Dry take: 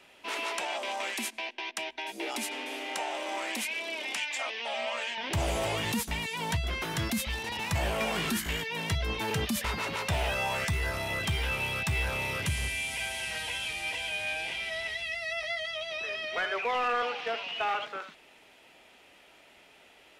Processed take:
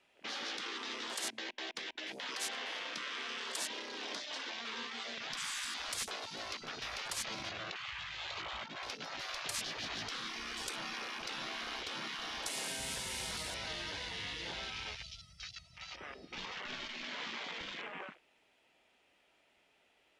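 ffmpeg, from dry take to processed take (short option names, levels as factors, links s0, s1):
-filter_complex "[0:a]asettb=1/sr,asplit=3[s0][s1][s2];[s0]atrim=end=7.514[s3];[s1]atrim=start=7.51:end=8.83,asetpts=PTS-STARTPTS,afade=t=in:d=0.004:c=qsin,afade=t=out:st=1.316:d=0.004:c=qsin,highpass=150,equalizer=f=250:t=q:w=4:g=8,equalizer=f=440:t=q:w=4:g=6,equalizer=f=1400:t=q:w=4:g=5,equalizer=f=3100:t=q:w=4:g=-6,lowpass=f=3800:w=0.5412,lowpass=f=3800:w=1.3066[s4];[s2]atrim=start=8.826[s5];[s3][s4]acrossfade=d=0.004:c1=hsin:c2=qsin[s6];[s6][s5]acrossfade=d=0.004:c1=qsin:c2=hsin,afftfilt=real='re*lt(hypot(re,im),0.0282)':imag='im*lt(hypot(re,im),0.0282)':win_size=1024:overlap=0.75,afwtdn=0.00398,lowpass=10000,volume=1.33"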